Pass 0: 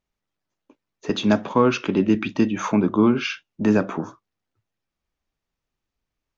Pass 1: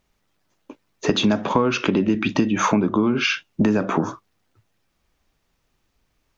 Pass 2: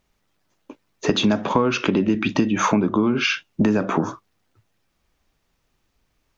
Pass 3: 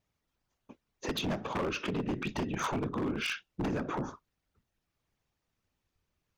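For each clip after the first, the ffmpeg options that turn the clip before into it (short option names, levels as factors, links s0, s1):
-filter_complex "[0:a]asplit=2[s0][s1];[s1]alimiter=limit=0.133:level=0:latency=1,volume=1[s2];[s0][s2]amix=inputs=2:normalize=0,acompressor=threshold=0.0708:ratio=8,volume=2.37"
-af anull
-af "afftfilt=real='hypot(re,im)*cos(2*PI*random(0))':imag='hypot(re,im)*sin(2*PI*random(1))':win_size=512:overlap=0.75,aeval=exprs='0.1*(abs(mod(val(0)/0.1+3,4)-2)-1)':c=same,volume=0.501"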